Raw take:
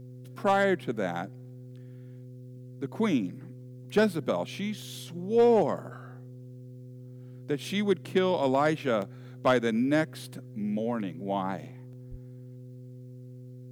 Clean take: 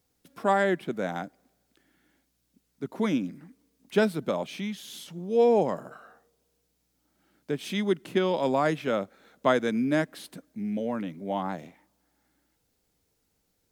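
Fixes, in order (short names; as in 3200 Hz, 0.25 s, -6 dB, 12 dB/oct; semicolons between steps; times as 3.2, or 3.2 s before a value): clip repair -15 dBFS; de-hum 125.7 Hz, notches 4; 12.1–12.22 HPF 140 Hz 24 dB/oct; interpolate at 4.82/9.02/11.93, 1 ms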